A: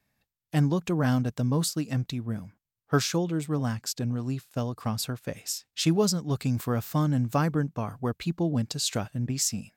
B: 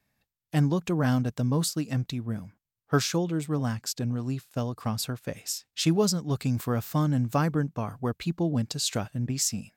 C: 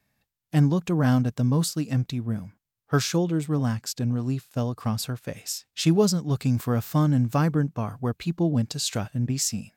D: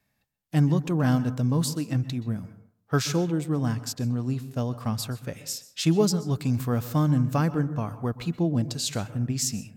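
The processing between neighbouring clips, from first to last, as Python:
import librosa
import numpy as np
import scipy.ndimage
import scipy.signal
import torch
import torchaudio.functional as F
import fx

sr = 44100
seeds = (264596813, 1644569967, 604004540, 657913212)

y1 = x
y2 = fx.hpss(y1, sr, part='harmonic', gain_db=4)
y3 = fx.rev_plate(y2, sr, seeds[0], rt60_s=0.57, hf_ratio=0.35, predelay_ms=115, drr_db=14.5)
y3 = y3 * librosa.db_to_amplitude(-1.5)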